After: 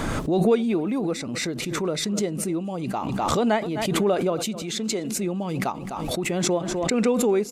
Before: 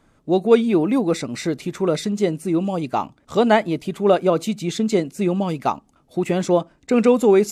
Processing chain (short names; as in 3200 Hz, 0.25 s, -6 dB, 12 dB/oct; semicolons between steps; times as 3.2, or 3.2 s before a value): 4.62–5.18 low shelf 240 Hz -9 dB; feedback echo 0.253 s, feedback 22%, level -20.5 dB; backwards sustainer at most 23 dB/s; gain -7.5 dB